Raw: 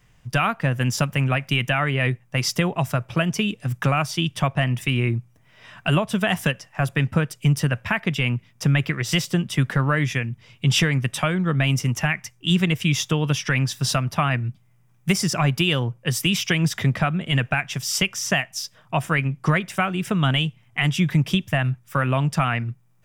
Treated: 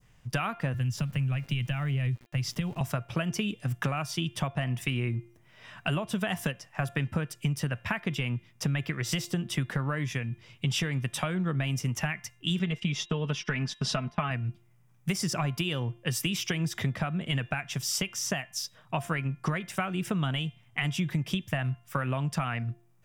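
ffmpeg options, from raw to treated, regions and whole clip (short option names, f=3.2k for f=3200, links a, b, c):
-filter_complex "[0:a]asettb=1/sr,asplit=3[a][b][c];[a]atrim=end=0.744[d];[b]atrim=start=0.74:end=2.81,asetpts=PTS-STARTPTS,afade=t=in:d=0.004:c=qsin,afade=t=out:st=2.066:d=0.004:c=qsin,bass=f=250:g=8,treble=f=4k:g=-8,acrossover=split=120|3000[e][f][g];[f]acompressor=threshold=-38dB:ratio=2:attack=3.2:release=140:knee=2.83:detection=peak[h];[e][h][g]amix=inputs=3:normalize=0,aeval=exprs='val(0)*gte(abs(val(0)),0.00562)':c=same[i];[c]atrim=start=2.806[j];[d][i]acrossfade=d=0.004:c1=hsin:c2=qsin[k];[k][j]acrossfade=d=0.004:c1=qsin:c2=hsin,asettb=1/sr,asplit=3[l][m][n];[l]atrim=end=12.594[o];[m]atrim=start=12.59:end=14.31,asetpts=PTS-STARTPTS,afade=t=in:d=0.004:c=qsin,afade=t=out:st=1.716:d=0.004:c=qsin,lowpass=5.1k,agate=range=-18dB:threshold=-34dB:ratio=16:release=100:detection=peak,aecho=1:1:4.7:0.59,atrim=end_sample=75852[p];[n]atrim=start=14.306[q];[o][p]acrossfade=d=0.004:c1=hsin:c2=qsin[r];[r][q]acrossfade=d=0.004:c1=qsin:c2=hsin,acompressor=threshold=-22dB:ratio=6,adynamicequalizer=threshold=0.0141:dfrequency=2200:dqfactor=0.77:tfrequency=2200:tqfactor=0.77:attack=5:release=100:ratio=0.375:range=2:mode=cutabove:tftype=bell,bandreject=f=348:t=h:w=4,bandreject=f=696:t=h:w=4,bandreject=f=1.044k:t=h:w=4,bandreject=f=1.392k:t=h:w=4,bandreject=f=1.74k:t=h:w=4,bandreject=f=2.088k:t=h:w=4,bandreject=f=2.436k:t=h:w=4,bandreject=f=2.784k:t=h:w=4,bandreject=f=3.132k:t=h:w=4,bandreject=f=3.48k:t=h:w=4,bandreject=f=3.828k:t=h:w=4,volume=-3.5dB"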